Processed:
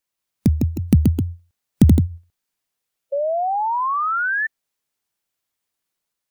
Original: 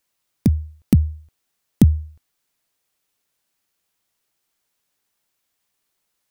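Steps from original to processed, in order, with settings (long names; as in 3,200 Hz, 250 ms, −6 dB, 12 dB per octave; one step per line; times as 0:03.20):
delay with pitch and tempo change per echo 181 ms, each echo +1 semitone, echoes 2
sound drawn into the spectrogram rise, 0:03.12–0:04.47, 550–1,800 Hz −21 dBFS
noise reduction from a noise print of the clip's start 8 dB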